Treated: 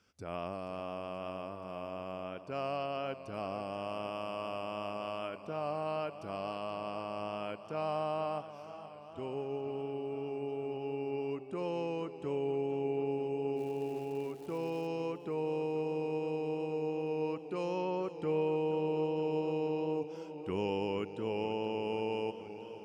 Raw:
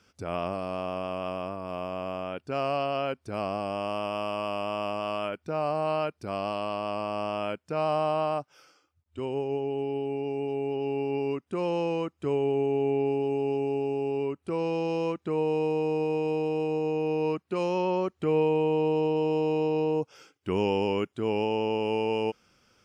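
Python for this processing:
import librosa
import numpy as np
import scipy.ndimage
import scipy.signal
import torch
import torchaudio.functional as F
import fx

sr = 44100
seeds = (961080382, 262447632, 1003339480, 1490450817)

y = fx.dmg_crackle(x, sr, seeds[0], per_s=500.0, level_db=-40.0, at=(13.56, 14.86), fade=0.02)
y = fx.echo_warbled(y, sr, ms=479, feedback_pct=73, rate_hz=2.8, cents=90, wet_db=-14)
y = F.gain(torch.from_numpy(y), -8.0).numpy()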